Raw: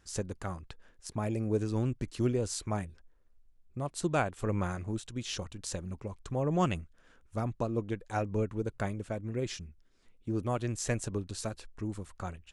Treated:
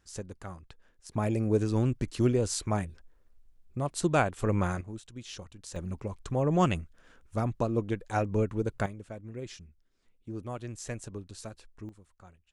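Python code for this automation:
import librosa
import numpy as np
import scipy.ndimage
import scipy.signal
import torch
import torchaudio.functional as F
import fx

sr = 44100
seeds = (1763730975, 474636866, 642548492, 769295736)

y = fx.gain(x, sr, db=fx.steps((0.0, -4.5), (1.13, 4.0), (4.81, -6.0), (5.76, 3.5), (8.86, -6.0), (11.89, -15.0)))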